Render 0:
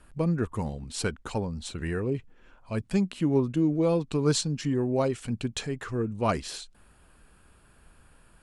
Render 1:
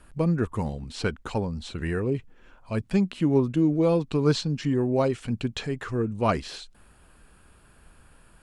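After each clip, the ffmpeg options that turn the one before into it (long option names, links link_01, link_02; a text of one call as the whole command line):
ffmpeg -i in.wav -filter_complex "[0:a]acrossover=split=5000[link_01][link_02];[link_02]acompressor=threshold=-53dB:ratio=4:attack=1:release=60[link_03];[link_01][link_03]amix=inputs=2:normalize=0,volume=2.5dB" out.wav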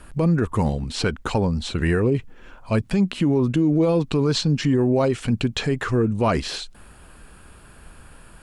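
ffmpeg -i in.wav -af "alimiter=limit=-20.5dB:level=0:latency=1:release=79,volume=9dB" out.wav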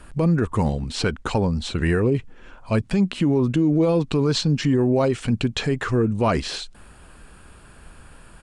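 ffmpeg -i in.wav -af "aresample=22050,aresample=44100" out.wav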